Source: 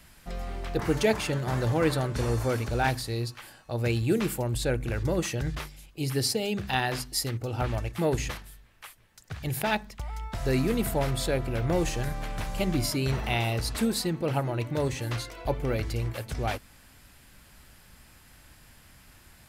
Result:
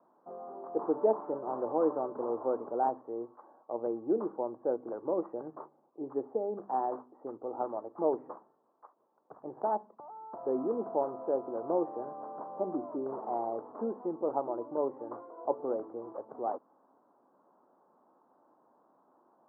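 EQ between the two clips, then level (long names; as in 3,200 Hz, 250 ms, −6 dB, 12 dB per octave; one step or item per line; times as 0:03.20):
high-pass filter 290 Hz 24 dB per octave
Butterworth low-pass 1,100 Hz 48 dB per octave
low-shelf EQ 370 Hz −4 dB
0.0 dB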